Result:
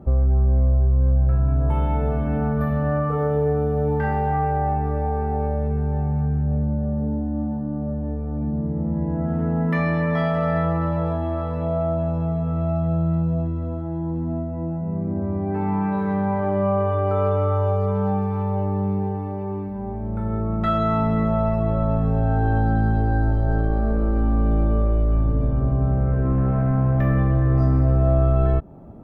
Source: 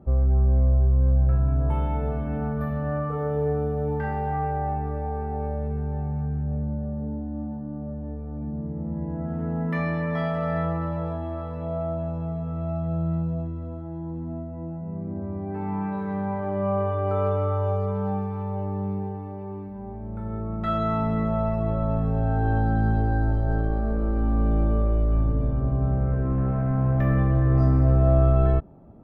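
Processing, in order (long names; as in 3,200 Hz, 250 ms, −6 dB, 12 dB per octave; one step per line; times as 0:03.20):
downward compressor 2 to 1, threshold −26 dBFS, peak gain reduction 7 dB
level +7 dB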